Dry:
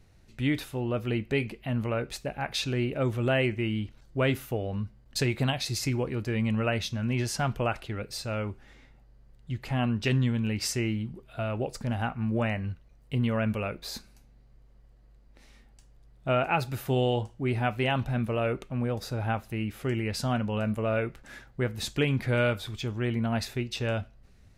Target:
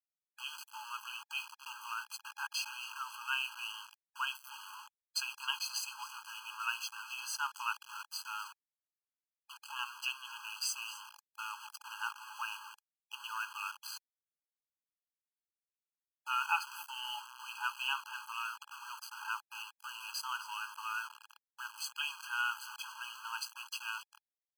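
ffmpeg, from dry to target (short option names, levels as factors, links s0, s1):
-filter_complex "[0:a]asplit=4[s0][s1][s2][s3];[s1]adelay=261,afreqshift=37,volume=0.126[s4];[s2]adelay=522,afreqshift=74,volume=0.0501[s5];[s3]adelay=783,afreqshift=111,volume=0.0202[s6];[s0][s4][s5][s6]amix=inputs=4:normalize=0,aeval=exprs='val(0)*gte(abs(val(0)),0.0178)':c=same,afftfilt=real='re*eq(mod(floor(b*sr/1024/830),2),1)':imag='im*eq(mod(floor(b*sr/1024/830),2),1)':win_size=1024:overlap=0.75,volume=0.841"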